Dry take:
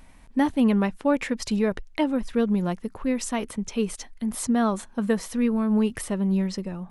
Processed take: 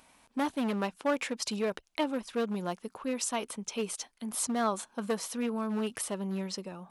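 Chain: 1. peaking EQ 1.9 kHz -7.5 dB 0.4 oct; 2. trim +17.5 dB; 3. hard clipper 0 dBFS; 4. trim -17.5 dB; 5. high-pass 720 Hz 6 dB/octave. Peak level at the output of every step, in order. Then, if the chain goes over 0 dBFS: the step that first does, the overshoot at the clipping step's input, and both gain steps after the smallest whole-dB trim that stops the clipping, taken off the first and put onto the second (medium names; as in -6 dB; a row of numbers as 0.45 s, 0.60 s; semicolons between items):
-11.5 dBFS, +6.0 dBFS, 0.0 dBFS, -17.5 dBFS, -16.5 dBFS; step 2, 6.0 dB; step 2 +11.5 dB, step 4 -11.5 dB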